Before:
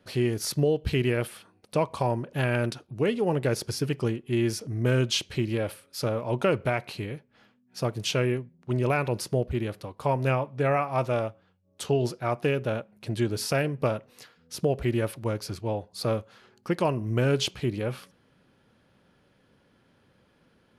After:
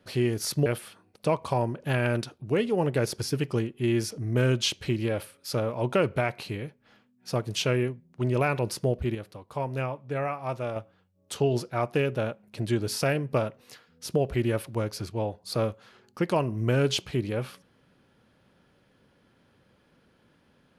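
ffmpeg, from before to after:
-filter_complex "[0:a]asplit=4[s0][s1][s2][s3];[s0]atrim=end=0.662[s4];[s1]atrim=start=1.148:end=9.642[s5];[s2]atrim=start=9.638:end=11.252,asetpts=PTS-STARTPTS,volume=0.531[s6];[s3]atrim=start=11.248[s7];[s4][s5]acrossfade=d=0.004:c1=hsin:c2=hsin[s8];[s8][s6]acrossfade=d=0.004:c1=hsin:c2=hsin[s9];[s9][s7]acrossfade=d=0.004:c1=hsin:c2=hsin"

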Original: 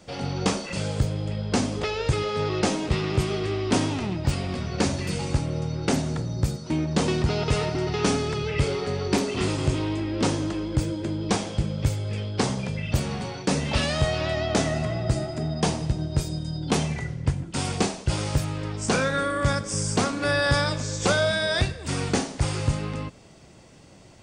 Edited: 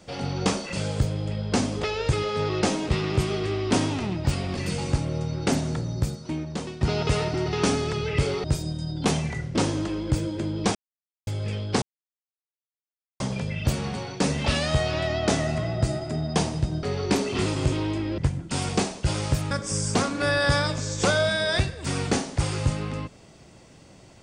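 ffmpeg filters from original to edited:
-filter_complex "[0:a]asplit=11[s0][s1][s2][s3][s4][s5][s6][s7][s8][s9][s10];[s0]atrim=end=4.572[s11];[s1]atrim=start=4.978:end=7.22,asetpts=PTS-STARTPTS,afade=t=out:st=1.322:d=0.92:silence=0.158489[s12];[s2]atrim=start=7.22:end=8.852,asetpts=PTS-STARTPTS,afade=t=in:d=0.004:c=hsin:silence=0.158489[s13];[s3]atrim=start=16.098:end=17.212[s14];[s4]atrim=start=10.198:end=11.4,asetpts=PTS-STARTPTS,afade=t=out:st=1.198:d=0.004:c=hsin[s15];[s5]atrim=start=11.4:end=11.92,asetpts=PTS-STARTPTS,volume=0[s16];[s6]atrim=start=11.92:end=12.47,asetpts=PTS-STARTPTS,afade=t=in:d=0.004:c=hsin,afade=t=out:st=0.546:d=0.004:c=hsin,apad=pad_dur=1.38[s17];[s7]atrim=start=12.47:end=16.102,asetpts=PTS-STARTPTS,afade=t=in:d=0.004:c=hsin[s18];[s8]atrim=start=8.848:end=10.202[s19];[s9]atrim=start=17.208:end=18.542[s20];[s10]atrim=start=19.528[s21];[s12][s13]concat=n=2:v=0:a=1[s22];[s11][s22]acrossfade=d=0.004:c1=hsin:c2=hsin[s23];[s23][s14]acrossfade=d=0.004:c1=hsin:c2=hsin[s24];[s15][s16][s17][s18]concat=n=4:v=0:a=1[s25];[s24][s25]acrossfade=d=0.004:c1=hsin:c2=hsin[s26];[s26][s19]acrossfade=d=0.004:c1=hsin:c2=hsin[s27];[s27][s20]acrossfade=d=0.004:c1=hsin:c2=hsin[s28];[s28][s21]acrossfade=d=0.004:c1=hsin:c2=hsin"

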